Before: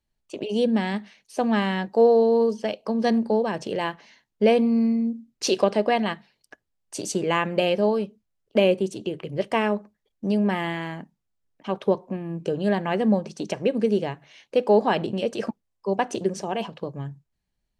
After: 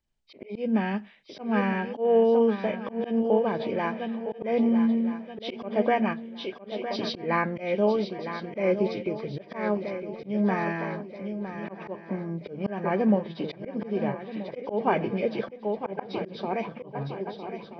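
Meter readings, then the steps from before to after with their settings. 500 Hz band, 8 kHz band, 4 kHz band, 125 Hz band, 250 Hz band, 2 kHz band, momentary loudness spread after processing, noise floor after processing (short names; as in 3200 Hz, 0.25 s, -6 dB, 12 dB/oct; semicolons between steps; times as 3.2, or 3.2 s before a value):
-4.0 dB, under -20 dB, -7.5 dB, -2.5 dB, -2.5 dB, -3.0 dB, 12 LU, -48 dBFS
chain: nonlinear frequency compression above 1500 Hz 1.5:1; swung echo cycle 1.279 s, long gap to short 3:1, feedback 37%, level -10 dB; auto swell 0.189 s; gain -1.5 dB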